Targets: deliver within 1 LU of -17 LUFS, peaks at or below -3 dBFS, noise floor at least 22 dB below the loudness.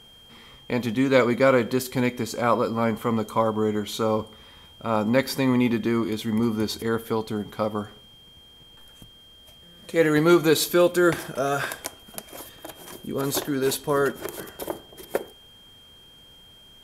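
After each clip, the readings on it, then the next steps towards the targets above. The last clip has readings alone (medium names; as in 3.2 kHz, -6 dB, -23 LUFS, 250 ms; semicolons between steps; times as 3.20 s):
steady tone 3.2 kHz; tone level -49 dBFS; loudness -24.0 LUFS; peak level -5.5 dBFS; loudness target -17.0 LUFS
-> band-stop 3.2 kHz, Q 30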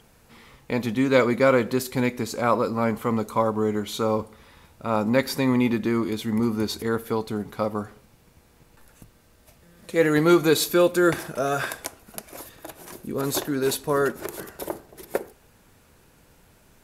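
steady tone not found; loudness -24.0 LUFS; peak level -5.5 dBFS; loudness target -17.0 LUFS
-> trim +7 dB; peak limiter -3 dBFS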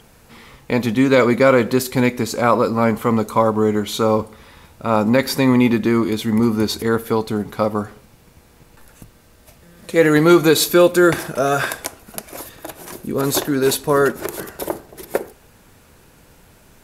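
loudness -17.5 LUFS; peak level -3.0 dBFS; noise floor -50 dBFS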